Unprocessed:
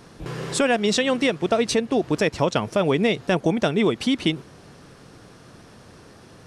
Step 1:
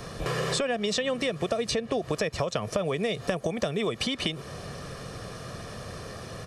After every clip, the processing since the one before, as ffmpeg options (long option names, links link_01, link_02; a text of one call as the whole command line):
ffmpeg -i in.wav -filter_complex "[0:a]acompressor=threshold=-23dB:ratio=6,aecho=1:1:1.7:0.52,acrossover=split=330|6800[link_01][link_02][link_03];[link_01]acompressor=threshold=-41dB:ratio=4[link_04];[link_02]acompressor=threshold=-35dB:ratio=4[link_05];[link_03]acompressor=threshold=-54dB:ratio=4[link_06];[link_04][link_05][link_06]amix=inputs=3:normalize=0,volume=7dB" out.wav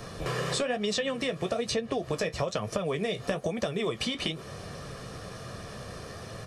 ffmpeg -i in.wav -af "flanger=delay=8.9:depth=7.8:regen=-43:speed=1.1:shape=sinusoidal,volume=2dB" out.wav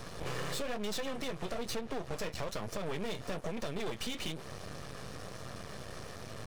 ffmpeg -i in.wav -af "aeval=exprs='max(val(0),0)':channel_layout=same,aeval=exprs='(tanh(15.8*val(0)+0.75)-tanh(0.75))/15.8':channel_layout=same,volume=6dB" out.wav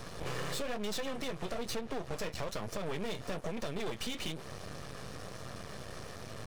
ffmpeg -i in.wav -af anull out.wav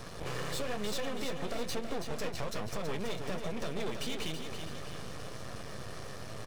ffmpeg -i in.wav -af "aecho=1:1:327|654|981|1308|1635|1962:0.447|0.228|0.116|0.0593|0.0302|0.0154" out.wav